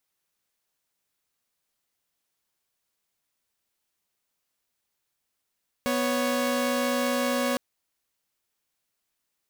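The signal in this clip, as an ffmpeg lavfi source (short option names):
-f lavfi -i "aevalsrc='0.0631*((2*mod(246.94*t,1)-1)+(2*mod(554.37*t,1)-1))':d=1.71:s=44100"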